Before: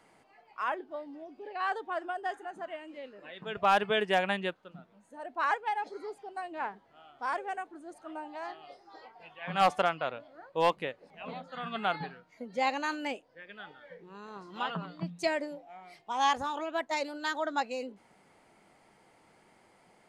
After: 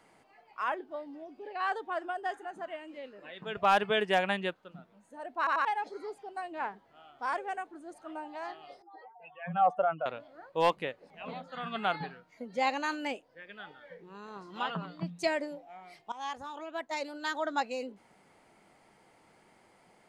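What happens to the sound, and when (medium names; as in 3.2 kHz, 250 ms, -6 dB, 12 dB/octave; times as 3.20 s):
5.38 s: stutter in place 0.09 s, 3 plays
8.82–10.06 s: spectral contrast enhancement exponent 2.1
16.12–17.50 s: fade in linear, from -15 dB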